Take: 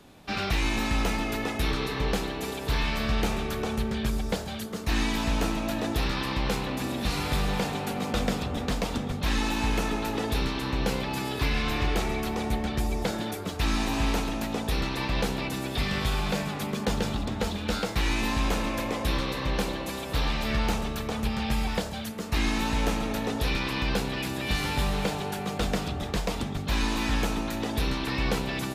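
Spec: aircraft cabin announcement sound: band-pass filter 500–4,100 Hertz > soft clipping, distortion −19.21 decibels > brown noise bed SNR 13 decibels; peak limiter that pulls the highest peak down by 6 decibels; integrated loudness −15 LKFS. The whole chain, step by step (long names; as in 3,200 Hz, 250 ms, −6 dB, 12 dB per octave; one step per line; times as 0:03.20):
brickwall limiter −20 dBFS
band-pass filter 500–4,100 Hz
soft clipping −28 dBFS
brown noise bed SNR 13 dB
level +21 dB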